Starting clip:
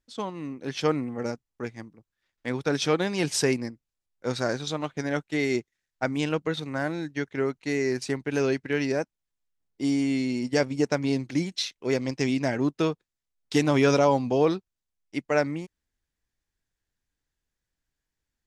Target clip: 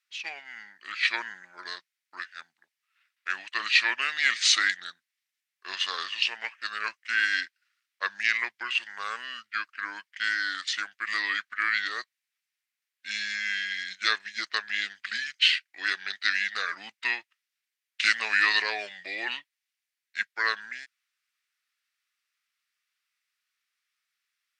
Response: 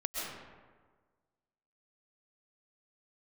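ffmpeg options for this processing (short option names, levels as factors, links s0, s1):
-af "highpass=f=2600:t=q:w=2.5,asetrate=33119,aresample=44100,volume=1.68"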